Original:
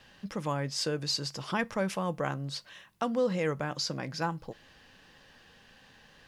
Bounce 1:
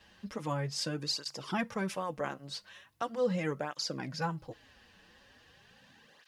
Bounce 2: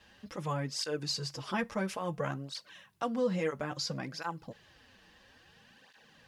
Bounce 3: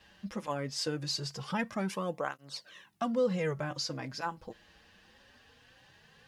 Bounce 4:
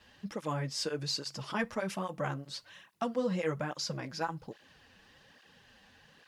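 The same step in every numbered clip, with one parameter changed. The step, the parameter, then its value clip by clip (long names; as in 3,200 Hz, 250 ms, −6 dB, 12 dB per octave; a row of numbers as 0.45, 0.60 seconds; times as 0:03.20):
through-zero flanger with one copy inverted, nulls at: 0.4, 0.59, 0.21, 1.2 Hertz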